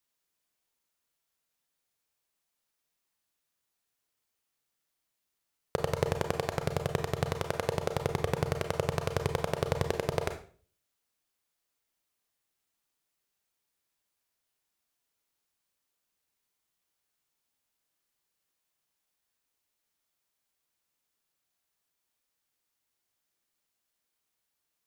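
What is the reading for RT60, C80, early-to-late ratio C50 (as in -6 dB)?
0.45 s, 14.0 dB, 10.0 dB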